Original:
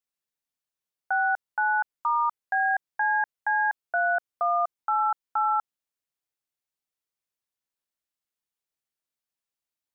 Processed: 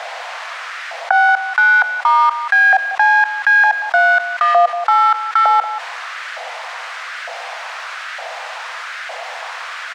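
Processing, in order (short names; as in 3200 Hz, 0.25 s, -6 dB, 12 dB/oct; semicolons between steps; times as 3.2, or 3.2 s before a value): half-wave gain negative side -3 dB; recorder AGC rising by 18 dB/s; added noise pink -50 dBFS; in parallel at -10 dB: bit-crush 4-bit; on the sum: LFO high-pass saw up 1.1 Hz 670–1500 Hz; rippled Chebyshev high-pass 480 Hz, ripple 6 dB; air absorption 120 m; on a send: echo 0.183 s -21.5 dB; on the sum: maximiser +12 dB; fast leveller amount 50%; gain -3 dB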